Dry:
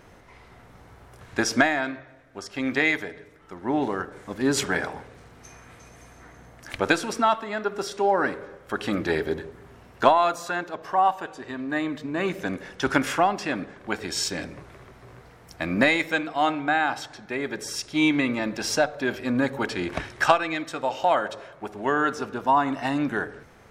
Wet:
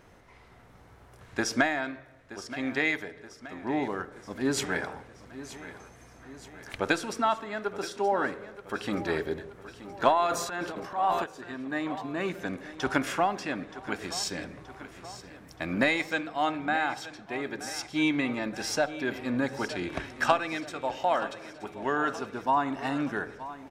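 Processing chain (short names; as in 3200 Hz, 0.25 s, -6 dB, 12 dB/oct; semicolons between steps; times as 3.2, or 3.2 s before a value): feedback echo 0.925 s, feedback 56%, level -15 dB; 10.26–11.24 transient shaper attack -8 dB, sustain +10 dB; gain -5 dB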